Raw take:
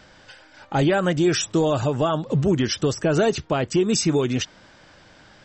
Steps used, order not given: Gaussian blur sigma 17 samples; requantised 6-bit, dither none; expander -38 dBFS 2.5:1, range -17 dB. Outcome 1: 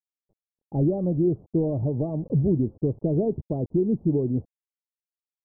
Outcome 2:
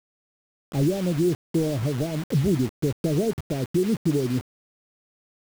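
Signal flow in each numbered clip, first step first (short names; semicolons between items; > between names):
requantised > expander > Gaussian blur; expander > Gaussian blur > requantised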